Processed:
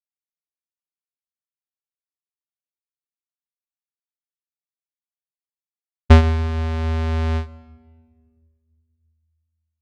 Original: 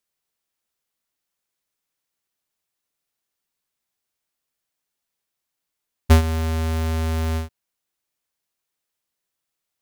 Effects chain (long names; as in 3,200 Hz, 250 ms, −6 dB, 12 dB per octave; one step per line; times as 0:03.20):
downward expander −19 dBFS
on a send at −22.5 dB: convolution reverb RT60 1.8 s, pre-delay 127 ms
on the sum: speech leveller within 4 dB 2 s
low-pass filter 3,800 Hz 12 dB per octave
level +5.5 dB